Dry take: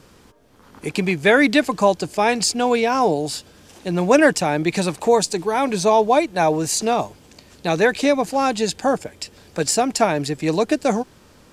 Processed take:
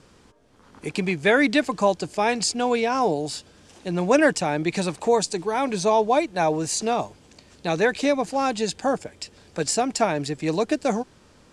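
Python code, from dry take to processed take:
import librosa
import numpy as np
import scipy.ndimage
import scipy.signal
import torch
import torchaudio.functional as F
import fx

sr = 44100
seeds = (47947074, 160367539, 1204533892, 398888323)

y = scipy.signal.sosfilt(scipy.signal.butter(4, 10000.0, 'lowpass', fs=sr, output='sos'), x)
y = y * librosa.db_to_amplitude(-4.0)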